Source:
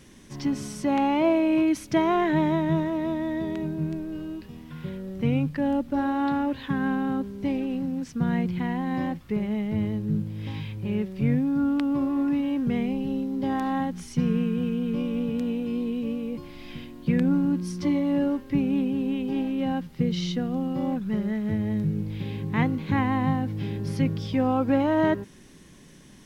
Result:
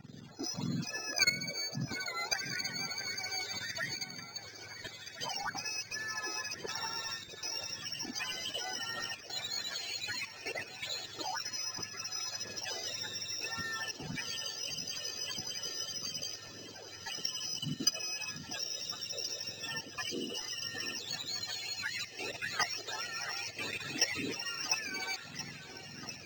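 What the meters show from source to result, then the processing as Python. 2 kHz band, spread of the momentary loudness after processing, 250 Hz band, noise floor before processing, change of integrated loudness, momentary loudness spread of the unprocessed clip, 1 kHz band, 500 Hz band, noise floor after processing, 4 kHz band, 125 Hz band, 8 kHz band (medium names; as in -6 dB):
0.0 dB, 7 LU, -24.5 dB, -49 dBFS, -10.0 dB, 9 LU, -13.0 dB, -18.0 dB, -49 dBFS, +8.5 dB, -19.0 dB, no reading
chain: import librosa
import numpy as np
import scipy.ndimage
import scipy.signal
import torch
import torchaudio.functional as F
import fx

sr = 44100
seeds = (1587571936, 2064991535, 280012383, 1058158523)

y = fx.octave_mirror(x, sr, pivot_hz=1200.0)
y = fx.hpss(y, sr, part='harmonic', gain_db=-8)
y = fx.level_steps(y, sr, step_db=14)
y = fx.phaser_stages(y, sr, stages=12, low_hz=170.0, high_hz=1000.0, hz=1.7, feedback_pct=25)
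y = fx.echo_alternate(y, sr, ms=687, hz=1900.0, feedback_pct=83, wet_db=-11.0)
y = np.interp(np.arange(len(y)), np.arange(len(y))[::4], y[::4])
y = y * librosa.db_to_amplitude(8.0)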